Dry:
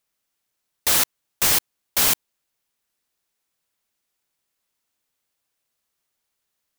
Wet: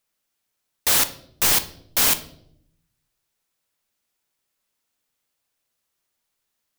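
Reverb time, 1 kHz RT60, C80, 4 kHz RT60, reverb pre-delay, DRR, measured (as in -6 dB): 0.75 s, 0.60 s, 18.5 dB, 0.55 s, 8 ms, 9.5 dB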